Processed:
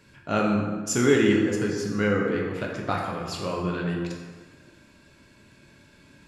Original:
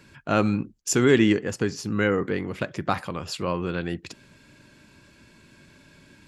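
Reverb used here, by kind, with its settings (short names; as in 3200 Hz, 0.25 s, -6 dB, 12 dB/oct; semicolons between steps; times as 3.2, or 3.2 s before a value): plate-style reverb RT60 1.6 s, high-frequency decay 0.6×, DRR -1.5 dB; gain -4.5 dB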